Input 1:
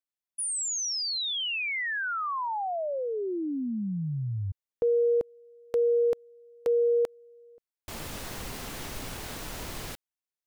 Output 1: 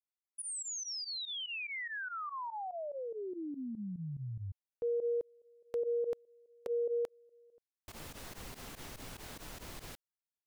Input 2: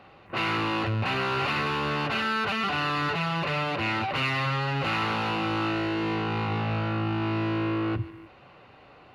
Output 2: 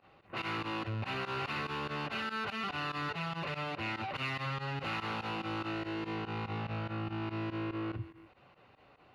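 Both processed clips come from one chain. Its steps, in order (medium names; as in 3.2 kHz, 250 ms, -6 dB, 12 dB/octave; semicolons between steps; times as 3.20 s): volume shaper 144 bpm, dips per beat 2, -19 dB, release 62 ms; trim -9 dB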